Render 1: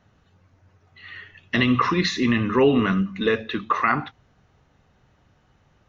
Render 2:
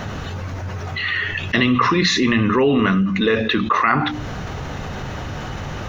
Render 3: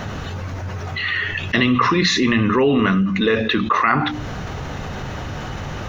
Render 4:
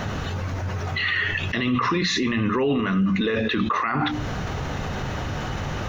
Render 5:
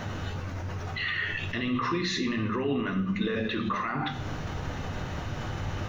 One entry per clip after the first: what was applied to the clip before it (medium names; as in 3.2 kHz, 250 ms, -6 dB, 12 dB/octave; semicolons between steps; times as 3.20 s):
hum notches 60/120/180/240/300 Hz; level flattener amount 70%
no audible change
peak limiter -14.5 dBFS, peak gain reduction 10.5 dB
reverberation RT60 0.75 s, pre-delay 8 ms, DRR 5.5 dB; trim -8 dB